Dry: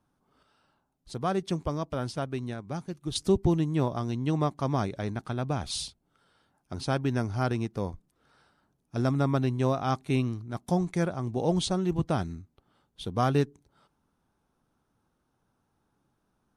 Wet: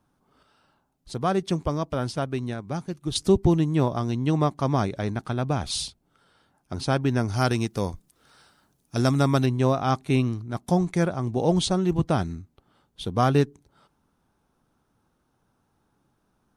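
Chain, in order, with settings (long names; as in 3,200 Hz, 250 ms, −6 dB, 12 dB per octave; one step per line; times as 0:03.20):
0:07.28–0:09.46: high-shelf EQ 3,200 Hz +11.5 dB
level +4.5 dB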